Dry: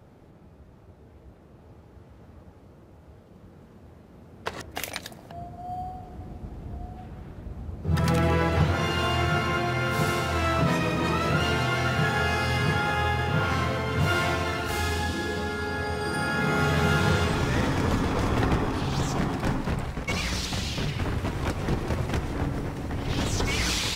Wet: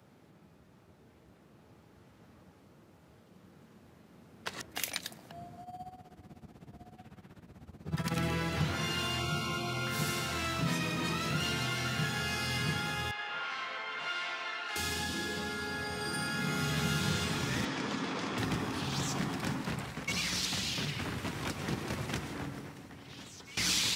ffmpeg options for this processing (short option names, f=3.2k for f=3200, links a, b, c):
-filter_complex "[0:a]asplit=3[a][b][c];[a]afade=t=out:st=5.62:d=0.02[d];[b]tremolo=f=16:d=0.8,afade=t=in:st=5.62:d=0.02,afade=t=out:st=8.15:d=0.02[e];[c]afade=t=in:st=8.15:d=0.02[f];[d][e][f]amix=inputs=3:normalize=0,asettb=1/sr,asplit=3[g][h][i];[g]atrim=end=9.194[j];[h]atrim=start=9.19:end=9.87,asetpts=PTS-STARTPTS,afade=t=in:d=0.004:c=qsin,afade=t=out:st=0.676:d=0.004:c=qsin,asuperstop=centerf=1800:order=20:qfactor=3[k];[i]atrim=start=9.866[l];[j][k]acrossfade=d=0.004:c1=hsin:c2=qsin[m];[m][l]acrossfade=d=0.004:c1=qsin:c2=hsin,asettb=1/sr,asplit=3[n][o][p];[n]atrim=end=13.114[q];[o]atrim=start=13.11:end=14.76,asetpts=PTS-STARTPTS,afade=t=in:d=0.004:c=qsin,afade=t=out:st=1.646:d=0.004:c=qsin,highpass=770,lowpass=3.3k[r];[p]atrim=start=14.756[s];[q][r]acrossfade=d=0.004:c1=hsin:c2=qsin[t];[t][s]acrossfade=d=0.004:c1=qsin:c2=hsin,asettb=1/sr,asplit=3[u][v][w];[u]atrim=end=17.654[x];[v]atrim=start=17.65:end=18.38,asetpts=PTS-STARTPTS,afade=t=in:d=0.004:c=qsin,afade=t=out:st=0.726:d=0.004:c=qsin,highpass=200,lowpass=5.6k[y];[w]atrim=start=18.376[z];[x][y]acrossfade=d=0.004:c1=hsin:c2=qsin[aa];[aa][z]acrossfade=d=0.004:c1=qsin:c2=hsin,asplit=2[ab][ac];[ab]atrim=end=23.57,asetpts=PTS-STARTPTS,afade=t=out:st=22.2:d=1.37:c=qua:silence=0.11885[ad];[ac]atrim=start=23.57,asetpts=PTS-STARTPTS,afade=t=in:d=0.004:c=hsin:silence=0.11885[ae];[ad][ae]concat=n=2:v=0:a=1,highpass=180,equalizer=f=520:w=0.48:g=-8.5,acrossover=split=310|3000[af][ag][ah];[ag]acompressor=threshold=-36dB:ratio=6[ai];[af][ai][ah]amix=inputs=3:normalize=0"